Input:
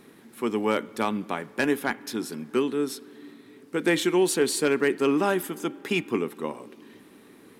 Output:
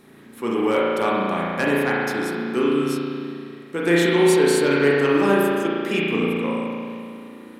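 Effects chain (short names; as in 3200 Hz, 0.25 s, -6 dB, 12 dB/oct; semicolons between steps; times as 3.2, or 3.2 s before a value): spring tank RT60 2.3 s, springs 35 ms, chirp 35 ms, DRR -5.5 dB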